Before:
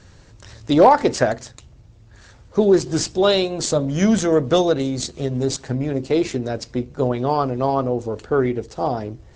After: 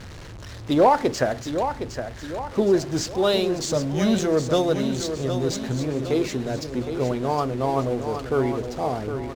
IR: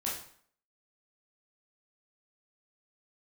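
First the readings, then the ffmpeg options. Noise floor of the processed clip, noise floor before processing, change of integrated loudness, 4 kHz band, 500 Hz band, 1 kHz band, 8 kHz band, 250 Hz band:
-38 dBFS, -48 dBFS, -4.0 dB, -3.5 dB, -3.5 dB, -3.5 dB, -4.0 dB, -3.5 dB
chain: -af "aeval=exprs='val(0)+0.5*0.0335*sgn(val(0))':c=same,adynamicsmooth=sensitivity=8:basefreq=3400,aecho=1:1:763|1526|2289|3052|3815:0.376|0.177|0.083|0.039|0.0183,volume=0.562"

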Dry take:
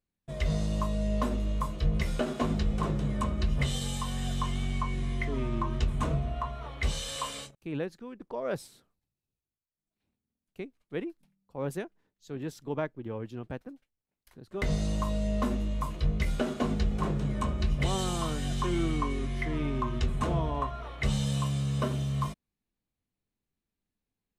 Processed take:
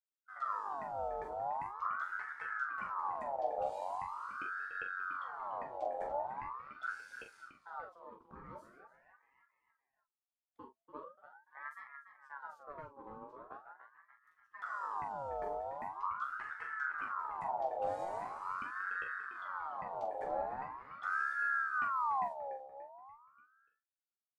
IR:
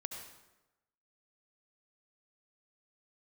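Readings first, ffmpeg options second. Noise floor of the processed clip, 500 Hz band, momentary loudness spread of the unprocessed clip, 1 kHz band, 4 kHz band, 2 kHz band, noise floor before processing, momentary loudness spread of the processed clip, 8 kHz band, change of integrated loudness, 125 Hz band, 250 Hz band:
under -85 dBFS, -7.5 dB, 9 LU, +0.5 dB, under -25 dB, +1.5 dB, under -85 dBFS, 17 LU, under -25 dB, -7.5 dB, -33.0 dB, -27.0 dB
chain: -filter_complex "[0:a]afwtdn=0.0282,acrossover=split=250|3000[s0][s1][s2];[s1]acompressor=threshold=0.01:ratio=6[s3];[s0][s3][s2]amix=inputs=3:normalize=0,asplit=2[s4][s5];[s5]adelay=291,lowpass=f=3200:p=1,volume=0.335,asplit=2[s6][s7];[s7]adelay=291,lowpass=f=3200:p=1,volume=0.48,asplit=2[s8][s9];[s9]adelay=291,lowpass=f=3200:p=1,volume=0.48,asplit=2[s10][s11];[s11]adelay=291,lowpass=f=3200:p=1,volume=0.48,asplit=2[s12][s13];[s13]adelay=291,lowpass=f=3200:p=1,volume=0.48[s14];[s6][s8][s10][s12][s14]amix=inputs=5:normalize=0[s15];[s4][s15]amix=inputs=2:normalize=0,flanger=delay=5.7:depth=8.2:regen=-50:speed=1:shape=triangular,asplit=2[s16][s17];[s17]aecho=0:1:14|43:0.501|0.447[s18];[s16][s18]amix=inputs=2:normalize=0,aeval=exprs='val(0)*sin(2*PI*1100*n/s+1100*0.4/0.42*sin(2*PI*0.42*n/s))':c=same,volume=0.562"

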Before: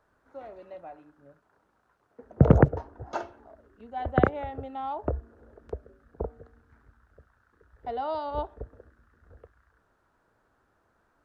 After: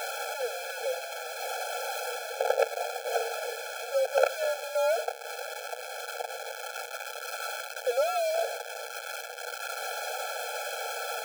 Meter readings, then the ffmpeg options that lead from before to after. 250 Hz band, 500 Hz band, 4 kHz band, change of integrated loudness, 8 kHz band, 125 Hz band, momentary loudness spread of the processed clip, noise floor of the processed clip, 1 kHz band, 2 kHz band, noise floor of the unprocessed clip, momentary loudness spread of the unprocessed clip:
under -40 dB, +3.5 dB, +19.0 dB, -4.0 dB, no reading, under -40 dB, 10 LU, -41 dBFS, +1.5 dB, +9.0 dB, -71 dBFS, 24 LU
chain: -af "aeval=exprs='val(0)+0.5*0.0531*sgn(val(0))':c=same,lowshelf=f=310:g=3,aeval=exprs='max(val(0),0)':c=same,afreqshift=-220,afftfilt=real='re*eq(mod(floor(b*sr/1024/440),2),1)':imag='im*eq(mod(floor(b*sr/1024/440),2),1)':win_size=1024:overlap=0.75,volume=2.37"

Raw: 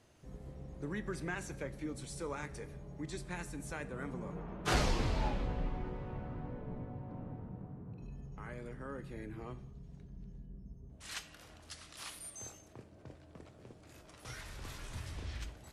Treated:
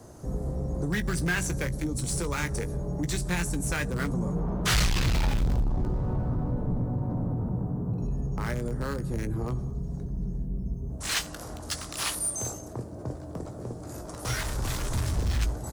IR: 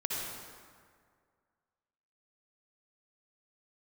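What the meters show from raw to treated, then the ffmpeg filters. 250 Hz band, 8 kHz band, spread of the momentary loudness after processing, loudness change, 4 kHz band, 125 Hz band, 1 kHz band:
+12.0 dB, +15.5 dB, 10 LU, +12.0 dB, +12.5 dB, +14.5 dB, +7.0 dB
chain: -filter_complex "[0:a]acrossover=split=180|1400|5000[s0][s1][s2][s3];[s1]acompressor=threshold=0.00282:ratio=6[s4];[s2]aeval=exprs='val(0)*gte(abs(val(0)),0.00266)':c=same[s5];[s0][s4][s5][s3]amix=inputs=4:normalize=0,apsyclip=15.8,asoftclip=type=tanh:threshold=0.168,asplit=2[s6][s7];[s7]adelay=17,volume=0.251[s8];[s6][s8]amix=inputs=2:normalize=0,volume=0.531"

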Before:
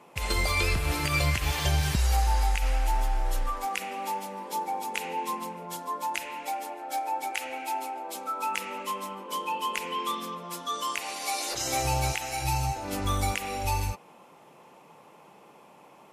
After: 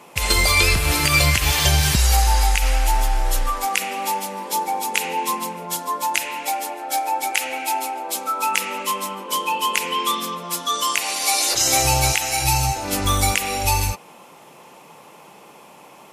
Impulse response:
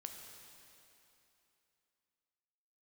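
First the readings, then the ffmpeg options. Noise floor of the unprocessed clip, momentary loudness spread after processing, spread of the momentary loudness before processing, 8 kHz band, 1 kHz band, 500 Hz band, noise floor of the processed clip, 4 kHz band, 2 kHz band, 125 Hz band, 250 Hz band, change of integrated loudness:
-54 dBFS, 9 LU, 9 LU, +14.0 dB, +8.0 dB, +7.5 dB, -46 dBFS, +12.5 dB, +10.5 dB, +7.0 dB, +7.0 dB, +10.0 dB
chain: -af "highshelf=f=2600:g=8,volume=2.24"

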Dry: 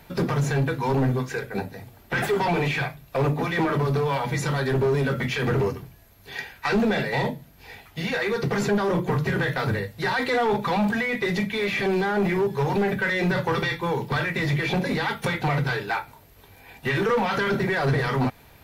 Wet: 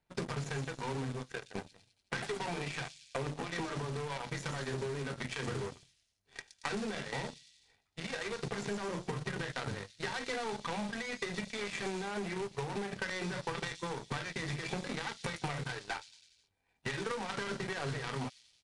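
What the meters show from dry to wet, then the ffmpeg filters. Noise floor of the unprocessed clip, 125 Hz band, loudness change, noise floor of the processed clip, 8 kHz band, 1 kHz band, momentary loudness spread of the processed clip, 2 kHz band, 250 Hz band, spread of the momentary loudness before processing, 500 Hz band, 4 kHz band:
-52 dBFS, -15.5 dB, -14.0 dB, -77 dBFS, -4.5 dB, -14.0 dB, 5 LU, -13.5 dB, -15.5 dB, 7 LU, -15.0 dB, -9.0 dB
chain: -filter_complex "[0:a]acompressor=threshold=0.0631:ratio=6,aeval=exprs='0.266*(cos(1*acos(clip(val(0)/0.266,-1,1)))-cos(1*PI/2))+0.0237*(cos(5*acos(clip(val(0)/0.266,-1,1)))-cos(5*PI/2))+0.00335*(cos(6*acos(clip(val(0)/0.266,-1,1)))-cos(6*PI/2))+0.0531*(cos(7*acos(clip(val(0)/0.266,-1,1)))-cos(7*PI/2))+0.00473*(cos(8*acos(clip(val(0)/0.266,-1,1)))-cos(8*PI/2))':c=same,acrossover=split=3600[s0][s1];[s0]acrusher=bits=3:mode=log:mix=0:aa=0.000001[s2];[s1]aecho=1:1:120|228|325.2|412.7|491.4:0.631|0.398|0.251|0.158|0.1[s3];[s2][s3]amix=inputs=2:normalize=0,aresample=22050,aresample=44100,volume=0.473"

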